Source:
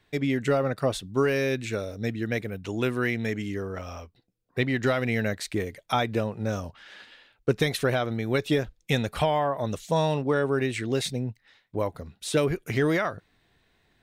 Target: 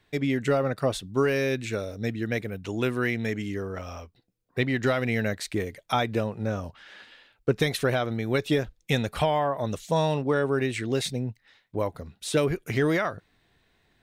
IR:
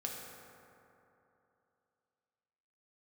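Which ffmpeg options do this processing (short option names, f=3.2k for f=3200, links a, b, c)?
-filter_complex "[0:a]asettb=1/sr,asplit=3[a][b][c];[a]atrim=end=6.354[d];[b]atrim=start=6.35:end=7.56,asetpts=PTS-STARTPTS,afade=t=in:d=0.004:c=qsin,afade=t=out:st=1.206:d=0.004:c=qsin,acrossover=split=2900[e][f];[f]acompressor=threshold=-52dB:ratio=4:attack=1:release=60[g];[e][g]amix=inputs=2:normalize=0[h];[c]atrim=start=7.556[i];[d][h]acrossfade=d=0.004:c1=hsin:c2=qsin[j];[j][i]acrossfade=d=0.004:c1=qsin:c2=hsin"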